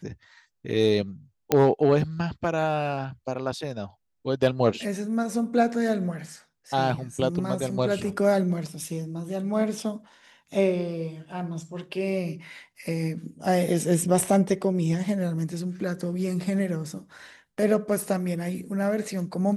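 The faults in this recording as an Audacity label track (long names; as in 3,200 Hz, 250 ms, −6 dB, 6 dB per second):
1.520000	1.520000	click −6 dBFS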